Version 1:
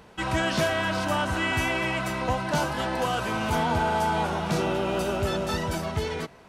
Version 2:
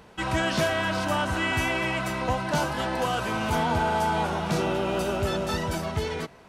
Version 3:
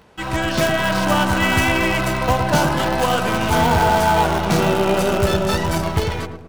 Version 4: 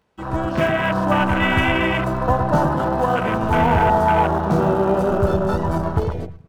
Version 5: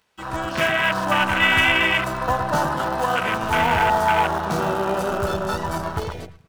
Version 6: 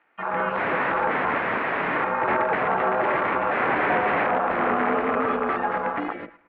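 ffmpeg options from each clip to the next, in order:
ffmpeg -i in.wav -af anull out.wav
ffmpeg -i in.wav -filter_complex "[0:a]dynaudnorm=framelen=470:gausssize=3:maxgain=4.5dB,asplit=2[link_01][link_02];[link_02]acrusher=bits=4:dc=4:mix=0:aa=0.000001,volume=-5.5dB[link_03];[link_01][link_03]amix=inputs=2:normalize=0,asplit=2[link_04][link_05];[link_05]adelay=109,lowpass=frequency=840:poles=1,volume=-4.5dB,asplit=2[link_06][link_07];[link_07]adelay=109,lowpass=frequency=840:poles=1,volume=0.47,asplit=2[link_08][link_09];[link_09]adelay=109,lowpass=frequency=840:poles=1,volume=0.47,asplit=2[link_10][link_11];[link_11]adelay=109,lowpass=frequency=840:poles=1,volume=0.47,asplit=2[link_12][link_13];[link_13]adelay=109,lowpass=frequency=840:poles=1,volume=0.47,asplit=2[link_14][link_15];[link_15]adelay=109,lowpass=frequency=840:poles=1,volume=0.47[link_16];[link_04][link_06][link_08][link_10][link_12][link_14][link_16]amix=inputs=7:normalize=0" out.wav
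ffmpeg -i in.wav -af "afwtdn=0.0891" out.wav
ffmpeg -i in.wav -af "tiltshelf=frequency=1100:gain=-8.5" out.wav
ffmpeg -i in.wav -af "crystalizer=i=8:c=0,aeval=exprs='(mod(3.98*val(0)+1,2)-1)/3.98':channel_layout=same,highpass=frequency=340:width_type=q:width=0.5412,highpass=frequency=340:width_type=q:width=1.307,lowpass=frequency=2200:width_type=q:width=0.5176,lowpass=frequency=2200:width_type=q:width=0.7071,lowpass=frequency=2200:width_type=q:width=1.932,afreqshift=-140" out.wav

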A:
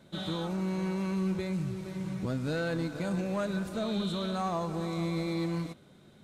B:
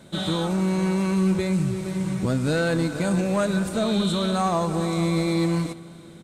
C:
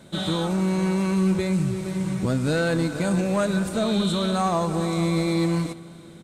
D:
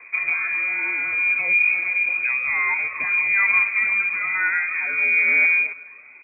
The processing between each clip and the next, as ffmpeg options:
ffmpeg -i in.wav -af "equalizer=frequency=8500:width=2.2:gain=8.5,aecho=1:1:341|682|1023|1364:0.0708|0.0375|0.0199|0.0105,volume=9dB" out.wav
ffmpeg -i in.wav -af anull out.wav
ffmpeg -i in.wav -af "aphaser=in_gain=1:out_gain=1:delay=1.8:decay=0.46:speed=0.56:type=sinusoidal,lowpass=frequency=2200:width_type=q:width=0.5098,lowpass=frequency=2200:width_type=q:width=0.6013,lowpass=frequency=2200:width_type=q:width=0.9,lowpass=frequency=2200:width_type=q:width=2.563,afreqshift=-2600" out.wav

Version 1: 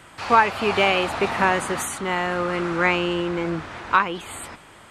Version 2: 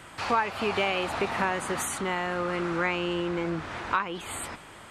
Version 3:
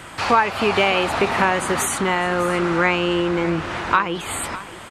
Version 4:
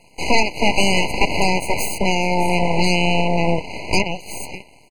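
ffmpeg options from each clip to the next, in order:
ffmpeg -i in.wav -af "acompressor=threshold=-29dB:ratio=2" out.wav
ffmpeg -i in.wav -af "aecho=1:1:605:0.15,volume=9dB" out.wav
ffmpeg -i in.wav -af "aeval=exprs='0.794*(cos(1*acos(clip(val(0)/0.794,-1,1)))-cos(1*PI/2))+0.126*(cos(7*acos(clip(val(0)/0.794,-1,1)))-cos(7*PI/2))+0.355*(cos(8*acos(clip(val(0)/0.794,-1,1)))-cos(8*PI/2))':channel_layout=same,afftfilt=real='re*eq(mod(floor(b*sr/1024/1000),2),0)':imag='im*eq(mod(floor(b*sr/1024/1000),2),0)':win_size=1024:overlap=0.75,volume=-3dB" out.wav

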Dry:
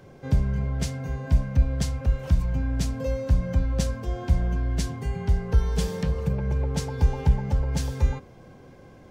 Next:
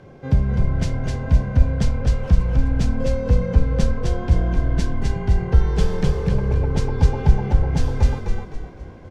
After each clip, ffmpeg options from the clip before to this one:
ffmpeg -i in.wav -filter_complex "[0:a]aemphasis=mode=reproduction:type=50fm,asplit=2[link_01][link_02];[link_02]asplit=5[link_03][link_04][link_05][link_06][link_07];[link_03]adelay=256,afreqshift=-39,volume=-3dB[link_08];[link_04]adelay=512,afreqshift=-78,volume=-11.4dB[link_09];[link_05]adelay=768,afreqshift=-117,volume=-19.8dB[link_10];[link_06]adelay=1024,afreqshift=-156,volume=-28.2dB[link_11];[link_07]adelay=1280,afreqshift=-195,volume=-36.6dB[link_12];[link_08][link_09][link_10][link_11][link_12]amix=inputs=5:normalize=0[link_13];[link_01][link_13]amix=inputs=2:normalize=0,volume=4dB" out.wav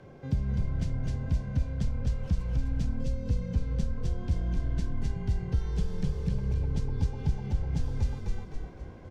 ffmpeg -i in.wav -filter_complex "[0:a]acrossover=split=270|2900[link_01][link_02][link_03];[link_01]acompressor=threshold=-19dB:ratio=4[link_04];[link_02]acompressor=threshold=-43dB:ratio=4[link_05];[link_03]acompressor=threshold=-48dB:ratio=4[link_06];[link_04][link_05][link_06]amix=inputs=3:normalize=0,volume=-5.5dB" out.wav

